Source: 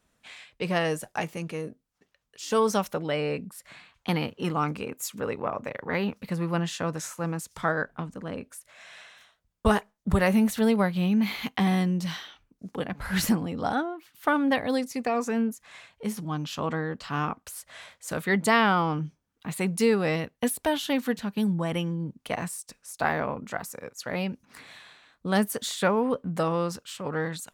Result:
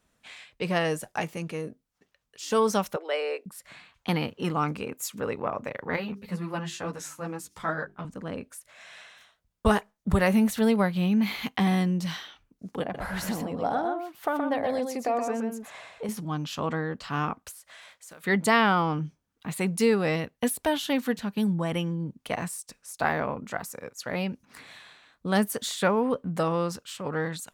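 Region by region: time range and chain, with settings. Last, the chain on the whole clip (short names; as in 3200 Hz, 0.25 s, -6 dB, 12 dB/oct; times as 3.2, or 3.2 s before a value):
2.96–3.46 steep high-pass 370 Hz 48 dB/oct + three-band expander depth 40%
5.96–8.05 notches 50/100/150/200/250/300/350/400 Hz + ensemble effect
12.82–16.09 compressor 2.5:1, threshold -35 dBFS + bell 660 Hz +10.5 dB 1.5 oct + echo 0.123 s -5.5 dB
17.51–18.24 block floating point 7-bit + low shelf 340 Hz -12 dB + compressor, threshold -44 dBFS
whole clip: dry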